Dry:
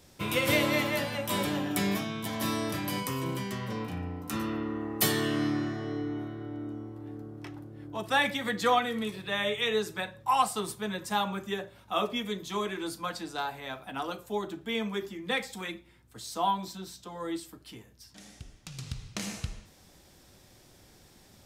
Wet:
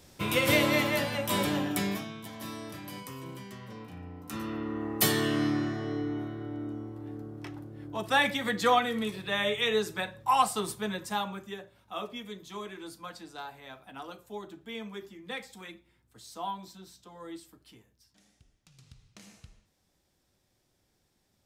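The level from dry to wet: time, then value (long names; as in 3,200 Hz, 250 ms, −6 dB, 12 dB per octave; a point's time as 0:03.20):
0:01.62 +1.5 dB
0:02.33 −9.5 dB
0:03.87 −9.5 dB
0:04.87 +1 dB
0:10.85 +1 dB
0:11.62 −8 dB
0:17.69 −8 dB
0:18.38 −16.5 dB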